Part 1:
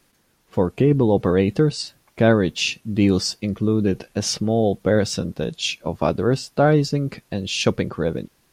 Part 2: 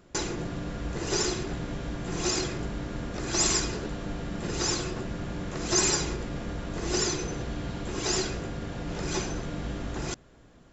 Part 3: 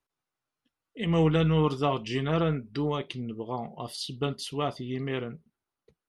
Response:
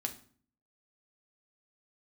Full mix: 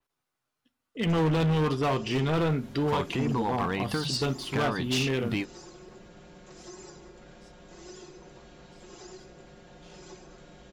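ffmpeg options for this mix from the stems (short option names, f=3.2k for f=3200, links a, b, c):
-filter_complex "[0:a]lowshelf=f=720:t=q:w=3:g=-8,bandreject=f=50:t=h:w=6,bandreject=f=100:t=h:w=6,bandreject=f=150:t=h:w=6,bandreject=f=200:t=h:w=6,acompressor=threshold=-27dB:ratio=6,adelay=2350,volume=2dB[a];[1:a]acrossover=split=350|940|2500[b][c][d][e];[b]acompressor=threshold=-42dB:ratio=4[f];[c]acompressor=threshold=-38dB:ratio=4[g];[d]acompressor=threshold=-52dB:ratio=4[h];[e]acompressor=threshold=-43dB:ratio=4[i];[f][g][h][i]amix=inputs=4:normalize=0,aecho=1:1:5.5:0.71,adelay=950,volume=-13dB[j];[2:a]deesser=0.95,volume=2dB,asplit=3[k][l][m];[l]volume=-11dB[n];[m]apad=whole_len=479491[o];[a][o]sidechaingate=range=-33dB:threshold=-46dB:ratio=16:detection=peak[p];[3:a]atrim=start_sample=2205[q];[n][q]afir=irnorm=-1:irlink=0[r];[p][j][k][r]amix=inputs=4:normalize=0,adynamicequalizer=threshold=0.00355:dfrequency=8300:dqfactor=0.87:tfrequency=8300:tqfactor=0.87:attack=5:release=100:ratio=0.375:range=2:mode=cutabove:tftype=bell,asoftclip=type=hard:threshold=-22dB"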